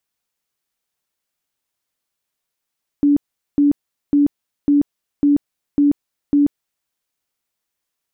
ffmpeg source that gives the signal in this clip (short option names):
-f lavfi -i "aevalsrc='0.316*sin(2*PI*288*mod(t,0.55))*lt(mod(t,0.55),39/288)':d=3.85:s=44100"